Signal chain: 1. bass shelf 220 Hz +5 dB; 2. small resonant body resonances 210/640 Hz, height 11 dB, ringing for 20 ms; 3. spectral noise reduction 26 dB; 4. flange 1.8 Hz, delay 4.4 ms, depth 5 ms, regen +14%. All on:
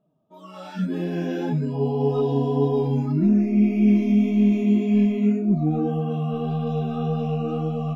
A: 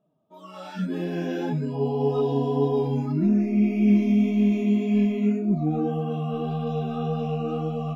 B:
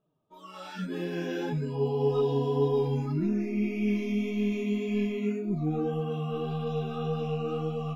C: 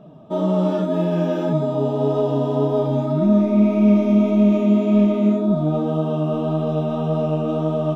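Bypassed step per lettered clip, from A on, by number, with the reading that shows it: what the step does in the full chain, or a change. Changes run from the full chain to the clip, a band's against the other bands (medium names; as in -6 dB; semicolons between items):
1, 125 Hz band -2.5 dB; 2, 250 Hz band -6.0 dB; 3, 500 Hz band +3.5 dB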